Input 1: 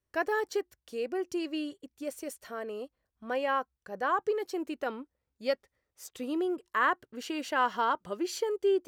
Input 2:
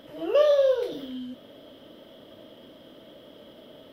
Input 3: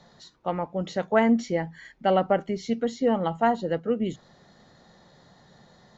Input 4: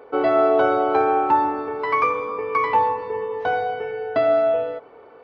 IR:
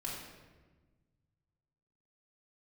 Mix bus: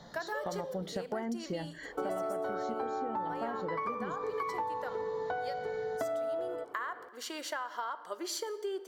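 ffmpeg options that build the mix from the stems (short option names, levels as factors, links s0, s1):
-filter_complex "[0:a]highpass=670,acompressor=threshold=0.0224:ratio=6,volume=1.26,asplit=2[s0][s1];[s1]volume=0.266[s2];[1:a]volume=0.141[s3];[2:a]acompressor=threshold=0.0126:ratio=2,volume=1.41[s4];[3:a]adelay=1850,volume=0.531[s5];[4:a]atrim=start_sample=2205[s6];[s2][s6]afir=irnorm=-1:irlink=0[s7];[s0][s3][s4][s5][s7]amix=inputs=5:normalize=0,equalizer=f=2600:w=4.3:g=-12,acompressor=threshold=0.0251:ratio=10"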